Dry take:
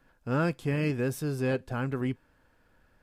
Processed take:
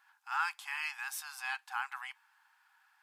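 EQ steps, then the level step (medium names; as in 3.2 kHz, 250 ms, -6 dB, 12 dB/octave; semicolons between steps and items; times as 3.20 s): brick-wall FIR high-pass 750 Hz; +1.5 dB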